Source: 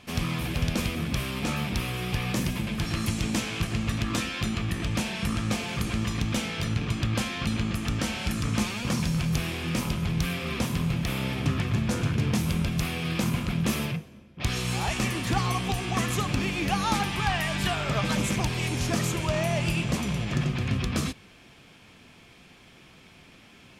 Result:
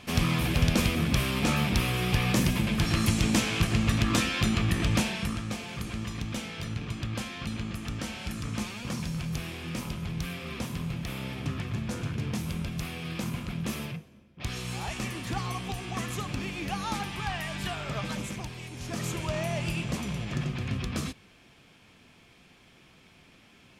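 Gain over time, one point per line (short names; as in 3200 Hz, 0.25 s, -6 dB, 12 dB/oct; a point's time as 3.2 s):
4.96 s +3 dB
5.46 s -6.5 dB
18.02 s -6.5 dB
18.71 s -13.5 dB
19.09 s -4.5 dB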